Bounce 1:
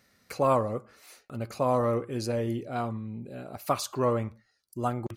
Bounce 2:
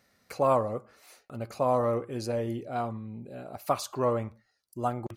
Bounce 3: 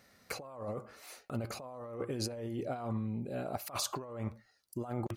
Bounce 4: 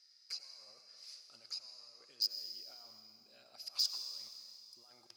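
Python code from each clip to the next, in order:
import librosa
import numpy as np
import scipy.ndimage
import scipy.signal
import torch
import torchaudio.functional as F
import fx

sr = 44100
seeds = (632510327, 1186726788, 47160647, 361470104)

y1 = fx.peak_eq(x, sr, hz=720.0, db=4.5, octaves=1.1)
y1 = F.gain(torch.from_numpy(y1), -3.0).numpy()
y2 = fx.over_compress(y1, sr, threshold_db=-37.0, ratio=-1.0)
y2 = F.gain(torch.from_numpy(y2), -2.5).numpy()
y3 = fx.bandpass_q(y2, sr, hz=5000.0, q=13.0)
y3 = np.clip(y3, -10.0 ** (-38.5 / 20.0), 10.0 ** (-38.5 / 20.0))
y3 = fx.rev_freeverb(y3, sr, rt60_s=2.6, hf_ratio=1.0, predelay_ms=50, drr_db=6.5)
y3 = F.gain(torch.from_numpy(y3), 13.0).numpy()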